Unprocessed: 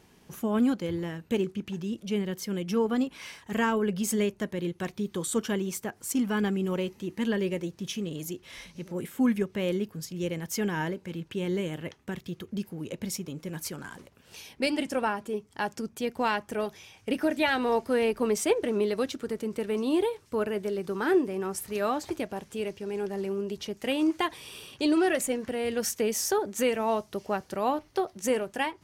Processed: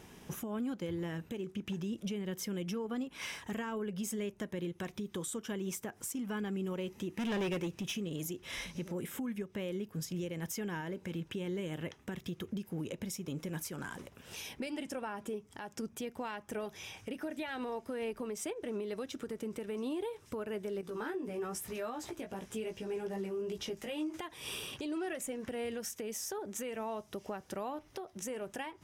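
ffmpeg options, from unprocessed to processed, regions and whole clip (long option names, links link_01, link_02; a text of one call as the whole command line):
ffmpeg -i in.wav -filter_complex "[0:a]asettb=1/sr,asplit=3[link_01][link_02][link_03];[link_01]atrim=end=7.144[link_04];[link_02]atrim=start=7.14:end=7.94,asetpts=PTS-STARTPTS,afade=type=in:duration=0.004:curve=qsin,afade=type=out:start_time=0.796:duration=0.004:curve=qsin,equalizer=frequency=2600:width_type=o:width=0.36:gain=8,volume=29.5dB,asoftclip=hard,volume=-29.5dB[link_05];[link_03]atrim=start=7.936[link_06];[link_04][link_05]acrossfade=duration=0.004:curve1=hsin:curve2=qsin[link_07];[link_07][link_06]acrossfade=duration=0.004:curve1=qsin:curve2=hsin,asettb=1/sr,asplit=3[link_08][link_09][link_10];[link_08]atrim=end=20.814[link_11];[link_09]atrim=start=20.81:end=24.14,asetpts=PTS-STARTPTS,afade=type=in:duration=0.004:curve=qsin,afade=type=out:start_time=3.326:duration=0.004:curve=qsin,acompressor=threshold=-38dB:ratio=2.5:attack=3.2:release=140:knee=1:detection=peak,flanger=delay=16:depth=2:speed=2.5[link_12];[link_10]atrim=start=24.136[link_13];[link_11][link_12]acrossfade=duration=0.004:curve1=hsin:curve2=qsin[link_14];[link_14][link_13]acrossfade=duration=0.004:curve1=qsin:curve2=hsin,bandreject=frequency=4400:width=7.9,acompressor=threshold=-36dB:ratio=6,alimiter=level_in=10.5dB:limit=-24dB:level=0:latency=1:release=278,volume=-10.5dB,volume=4.5dB" out.wav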